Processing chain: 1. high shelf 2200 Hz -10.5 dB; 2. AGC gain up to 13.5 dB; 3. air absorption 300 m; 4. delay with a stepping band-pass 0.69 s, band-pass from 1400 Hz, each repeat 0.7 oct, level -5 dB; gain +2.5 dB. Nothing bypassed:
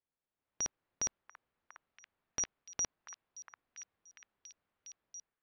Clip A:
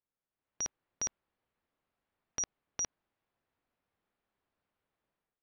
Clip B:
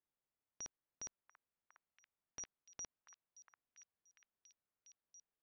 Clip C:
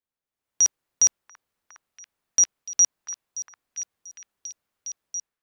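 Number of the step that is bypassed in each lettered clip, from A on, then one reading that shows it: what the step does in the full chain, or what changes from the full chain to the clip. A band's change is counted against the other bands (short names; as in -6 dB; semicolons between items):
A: 4, echo-to-direct -6.5 dB to none; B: 2, loudness change -12.0 LU; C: 3, crest factor change -8.5 dB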